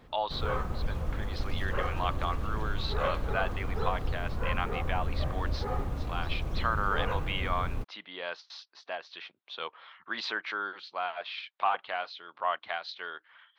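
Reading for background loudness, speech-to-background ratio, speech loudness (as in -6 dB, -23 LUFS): -35.0 LUFS, -0.5 dB, -35.5 LUFS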